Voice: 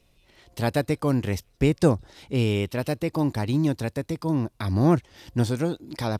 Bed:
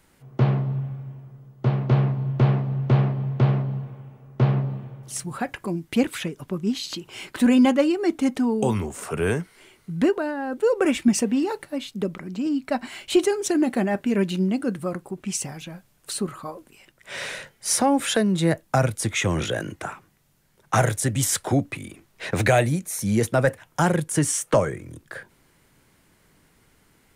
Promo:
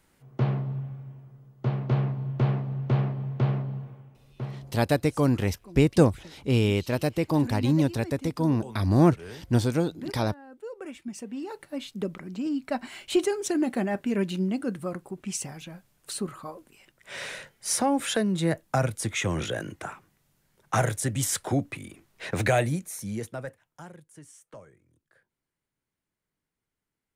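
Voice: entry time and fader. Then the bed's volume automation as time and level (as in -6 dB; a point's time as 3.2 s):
4.15 s, +0.5 dB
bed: 3.91 s -5.5 dB
4.66 s -19 dB
11.09 s -19 dB
11.79 s -4.5 dB
22.77 s -4.5 dB
24.01 s -27.5 dB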